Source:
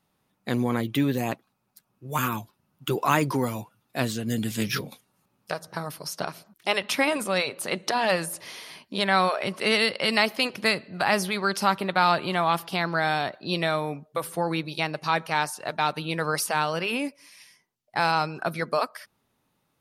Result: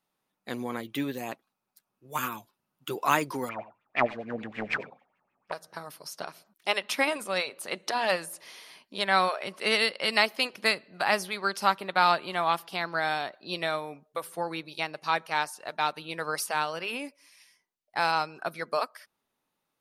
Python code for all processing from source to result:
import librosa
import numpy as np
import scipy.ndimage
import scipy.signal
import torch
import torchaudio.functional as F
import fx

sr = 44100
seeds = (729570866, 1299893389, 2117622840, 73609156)

y = fx.chain(x, sr, fx.self_delay(depth_ms=0.54),
    fx.filter_lfo_lowpass(shape='sine', hz=6.7, low_hz=630.0, high_hz=2500.0, q=6.3),
    fx.echo_single(ms=92, db=-15.0), at=(3.49, 5.52))
y = fx.peak_eq(y, sr, hz=88.0, db=-12.5, octaves=2.4)
y = fx.upward_expand(y, sr, threshold_db=-32.0, expansion=1.5)